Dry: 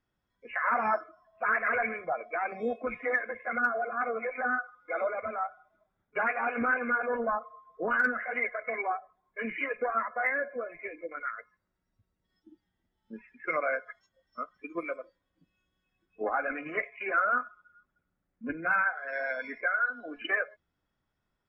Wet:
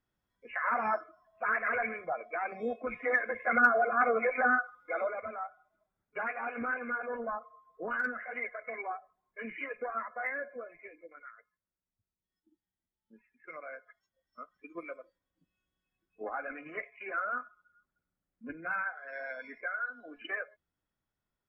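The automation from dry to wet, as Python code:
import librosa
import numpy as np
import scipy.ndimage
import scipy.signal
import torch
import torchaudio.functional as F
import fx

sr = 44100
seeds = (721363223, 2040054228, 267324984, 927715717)

y = fx.gain(x, sr, db=fx.line((2.86, -3.0), (3.52, 4.5), (4.37, 4.5), (5.44, -6.5), (10.54, -6.5), (11.36, -15.5), (13.57, -15.5), (14.7, -7.5)))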